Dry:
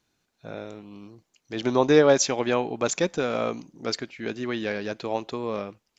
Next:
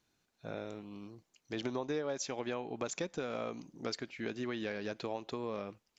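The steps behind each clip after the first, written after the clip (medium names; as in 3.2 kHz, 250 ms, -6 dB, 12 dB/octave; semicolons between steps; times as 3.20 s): compression 6:1, threshold -30 dBFS, peak gain reduction 17 dB; trim -4 dB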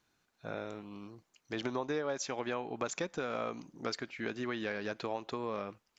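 peaking EQ 1.3 kHz +5.5 dB 1.5 oct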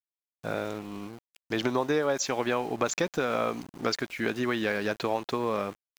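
small samples zeroed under -52 dBFS; trim +8.5 dB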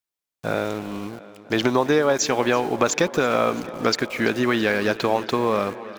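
tape echo 334 ms, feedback 82%, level -17 dB, low-pass 5.6 kHz; trim +7.5 dB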